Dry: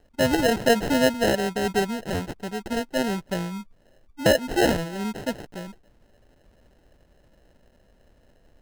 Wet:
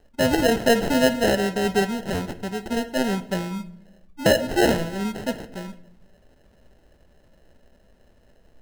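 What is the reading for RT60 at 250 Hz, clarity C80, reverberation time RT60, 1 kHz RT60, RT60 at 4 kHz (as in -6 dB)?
1.2 s, 18.5 dB, 0.75 s, 0.65 s, 0.55 s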